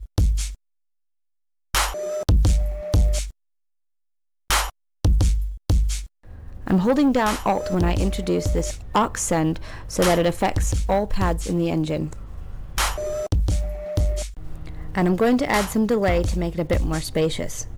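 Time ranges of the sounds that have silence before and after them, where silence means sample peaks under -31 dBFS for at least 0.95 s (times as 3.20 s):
1.74–3.30 s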